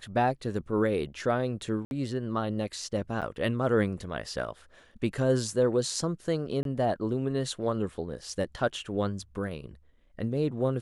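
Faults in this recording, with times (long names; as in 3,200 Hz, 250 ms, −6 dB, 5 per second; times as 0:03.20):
0:01.85–0:01.91: drop-out 61 ms
0:03.21–0:03.22: drop-out 7.8 ms
0:06.63–0:06.65: drop-out 22 ms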